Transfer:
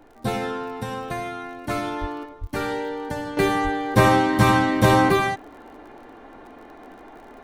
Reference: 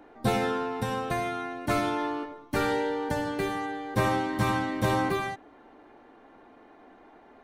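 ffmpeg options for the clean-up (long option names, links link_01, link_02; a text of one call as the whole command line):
ffmpeg -i in.wav -filter_complex "[0:a]adeclick=threshold=4,asplit=3[link_01][link_02][link_03];[link_01]afade=type=out:start_time=2:duration=0.02[link_04];[link_02]highpass=frequency=140:width=0.5412,highpass=frequency=140:width=1.3066,afade=type=in:start_time=2:duration=0.02,afade=type=out:start_time=2.12:duration=0.02[link_05];[link_03]afade=type=in:start_time=2.12:duration=0.02[link_06];[link_04][link_05][link_06]amix=inputs=3:normalize=0,asplit=3[link_07][link_08][link_09];[link_07]afade=type=out:start_time=2.4:duration=0.02[link_10];[link_08]highpass=frequency=140:width=0.5412,highpass=frequency=140:width=1.3066,afade=type=in:start_time=2.4:duration=0.02,afade=type=out:start_time=2.52:duration=0.02[link_11];[link_09]afade=type=in:start_time=2.52:duration=0.02[link_12];[link_10][link_11][link_12]amix=inputs=3:normalize=0,asplit=3[link_13][link_14][link_15];[link_13]afade=type=out:start_time=3.63:duration=0.02[link_16];[link_14]highpass=frequency=140:width=0.5412,highpass=frequency=140:width=1.3066,afade=type=in:start_time=3.63:duration=0.02,afade=type=out:start_time=3.75:duration=0.02[link_17];[link_15]afade=type=in:start_time=3.75:duration=0.02[link_18];[link_16][link_17][link_18]amix=inputs=3:normalize=0,agate=range=-21dB:threshold=-37dB,asetnsamples=nb_out_samples=441:pad=0,asendcmd='3.37 volume volume -9.5dB',volume=0dB" out.wav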